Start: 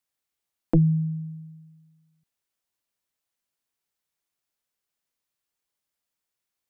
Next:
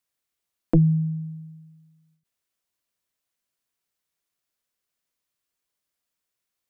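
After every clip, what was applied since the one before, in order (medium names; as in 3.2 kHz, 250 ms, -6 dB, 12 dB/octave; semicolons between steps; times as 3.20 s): band-stop 840 Hz, Q 12; endings held to a fixed fall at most 150 dB/s; trim +1.5 dB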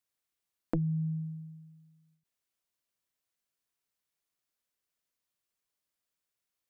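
compression 6:1, threshold -24 dBFS, peak gain reduction 10 dB; trim -4.5 dB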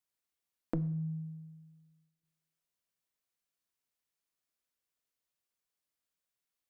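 two-slope reverb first 0.72 s, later 2.6 s, from -26 dB, DRR 13 dB; endings held to a fixed fall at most 110 dB/s; trim -3 dB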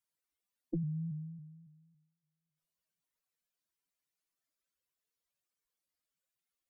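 spectral contrast enhancement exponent 2.5; vibrato with a chosen wave saw up 3.6 Hz, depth 100 cents; trim -1.5 dB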